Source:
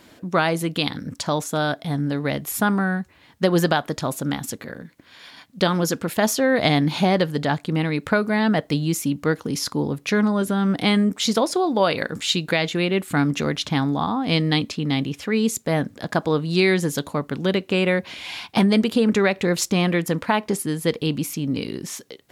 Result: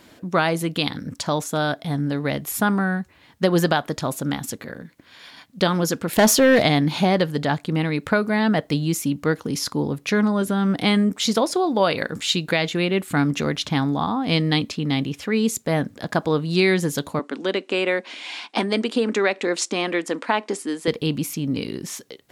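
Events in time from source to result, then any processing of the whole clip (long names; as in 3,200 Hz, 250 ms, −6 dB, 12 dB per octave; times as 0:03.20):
0:06.13–0:06.63: leveller curve on the samples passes 2
0:17.19–0:20.88: elliptic band-pass filter 260–8,800 Hz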